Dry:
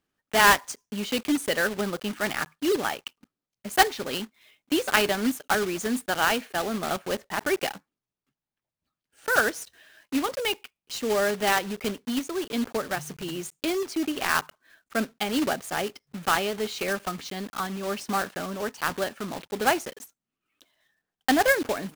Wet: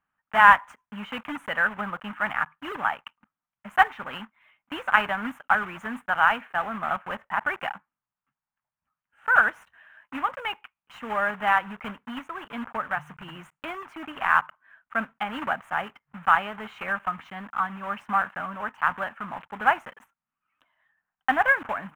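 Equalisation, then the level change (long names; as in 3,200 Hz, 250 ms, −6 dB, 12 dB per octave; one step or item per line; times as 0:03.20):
drawn EQ curve 210 Hz 0 dB, 390 Hz −12 dB, 920 Hz +11 dB, 1,400 Hz +11 dB, 3,000 Hz −1 dB, 4,500 Hz −25 dB, 7,400 Hz −18 dB
−5.0 dB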